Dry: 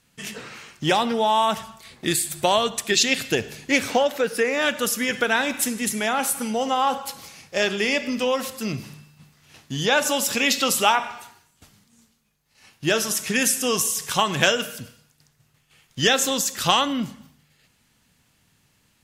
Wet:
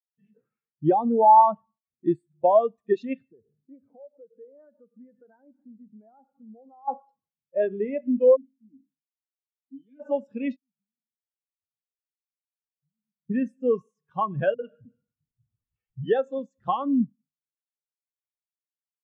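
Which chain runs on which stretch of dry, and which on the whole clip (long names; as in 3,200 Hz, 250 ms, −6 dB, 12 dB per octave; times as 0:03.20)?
0:03.31–0:06.88: low-pass filter 1,500 Hz + downward compressor 4 to 1, threshold −33 dBFS
0:08.36–0:10.00: formant filter i + level that may fall only so fast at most 93 dB per second
0:10.56–0:13.30: inverse Chebyshev low-pass filter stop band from 850 Hz, stop band 70 dB + downward compressor 3 to 1, threshold −53 dBFS
0:14.54–0:16.68: multiband delay without the direct sound lows, highs 50 ms, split 160 Hz + upward compression, threshold −23 dBFS
whole clip: low-pass filter 1,300 Hz 6 dB per octave; every bin expanded away from the loudest bin 2.5 to 1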